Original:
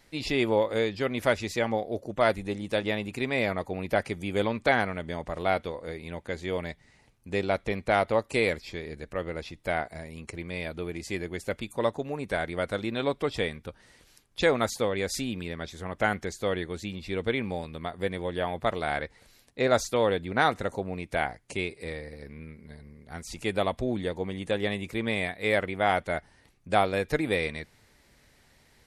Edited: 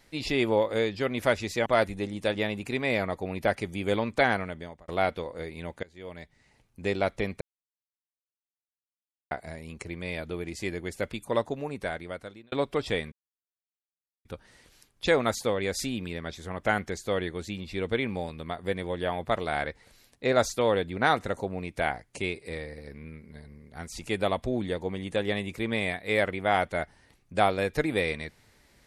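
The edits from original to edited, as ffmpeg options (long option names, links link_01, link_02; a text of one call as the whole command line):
ffmpeg -i in.wav -filter_complex "[0:a]asplit=8[link_01][link_02][link_03][link_04][link_05][link_06][link_07][link_08];[link_01]atrim=end=1.662[link_09];[link_02]atrim=start=2.138:end=5.36,asetpts=PTS-STARTPTS,afade=type=out:start_time=2.742:duration=0.48[link_10];[link_03]atrim=start=5.36:end=6.31,asetpts=PTS-STARTPTS,afade=type=in:duration=0.004:curve=hsin,afade=type=out:start_time=0.946:duration=0.004:curve=hsin:silence=0.0668344[link_11];[link_04]atrim=start=6.31:end=7.89,asetpts=PTS-STARTPTS,afade=type=in:duration=0.99:silence=0.0668344,afade=type=out:start_time=1.576:duration=0.004:curve=hsin[link_12];[link_05]atrim=start=7.89:end=9.79,asetpts=PTS-STARTPTS,volume=0[link_13];[link_06]atrim=start=9.79:end=13,asetpts=PTS-STARTPTS,afade=type=in:duration=0.004:curve=hsin,afade=type=out:start_time=2.26:duration=0.95[link_14];[link_07]atrim=start=13:end=13.6,asetpts=PTS-STARTPTS,afade=type=in:duration=0.004:curve=hsin,afade=type=out:start_time=0.596:duration=0.004:curve=hsin,apad=pad_dur=1.13[link_15];[link_08]atrim=start=13.6,asetpts=PTS-STARTPTS,afade=type=in:duration=0.004:curve=hsin[link_16];[link_10][link_11][link_12][link_13][link_14][link_15][link_16]concat=n=7:v=0:a=1[link_17];[link_09][link_17]acrossfade=duration=0.004:curve1=hsin:curve2=hsin" out.wav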